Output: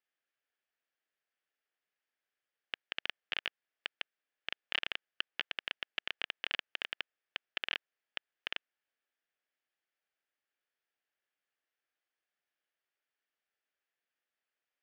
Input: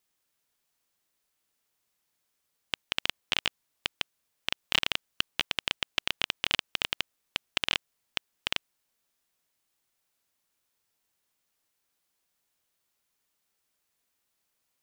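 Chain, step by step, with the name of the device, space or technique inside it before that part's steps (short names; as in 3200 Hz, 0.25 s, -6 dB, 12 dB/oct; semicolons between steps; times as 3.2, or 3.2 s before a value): phone earpiece (speaker cabinet 380–4200 Hz, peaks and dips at 1000 Hz -8 dB, 1700 Hz +6 dB, 4000 Hz -8 dB); gain -7 dB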